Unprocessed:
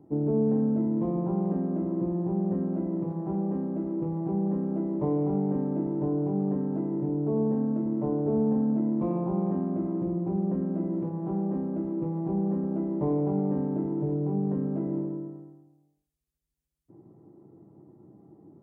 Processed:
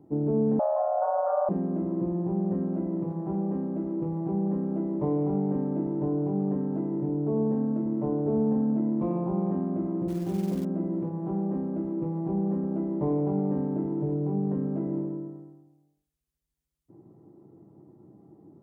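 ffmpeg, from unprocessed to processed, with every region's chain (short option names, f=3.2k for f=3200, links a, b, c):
-filter_complex "[0:a]asettb=1/sr,asplit=3[a][b][c];[a]atrim=end=0.594[d];[b]atrim=start=0.59:end=1.49,asetpts=PTS-STARTPTS,afade=t=in:d=0.004:c=qsin,afade=t=out:st=0.896:d=0.004:c=qsin,lowpass=f=1.2k:w=0.5412,lowpass=f=1.2k:w=1.3066,aecho=1:1:6.1:0.36,atrim=end_sample=39690,afreqshift=400[e];[c]atrim=start=1.486[f];[d][e]acrossfade=d=0.004:c1=hsin:c2=qsin[g];[g][f]acrossfade=d=0.004:c1=qsin:c2=hsin,asettb=1/sr,asplit=3[h][i][j];[h]atrim=end=10.084[k];[i]atrim=start=10.08:end=10.65,asetpts=PTS-STARTPTS,afade=t=in:d=0.004:c=qsin,afade=t=out:st=0.566:d=0.004:c=qsin,lowpass=1.3k,aeval=exprs='sgn(val(0))*max(abs(val(0))-0.00335,0)':c=same,acrusher=bits=6:mode=log:mix=0:aa=0.000001[l];[j]atrim=start=10.646[m];[k][l]acrossfade=d=0.004:c1=hsin:c2=qsin[n];[n][m]acrossfade=d=0.004:c1=qsin:c2=hsin"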